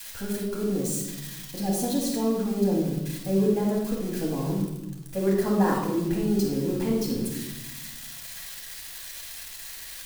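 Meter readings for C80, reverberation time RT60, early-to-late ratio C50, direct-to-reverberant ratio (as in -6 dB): 5.5 dB, 1.0 s, 2.0 dB, -4.5 dB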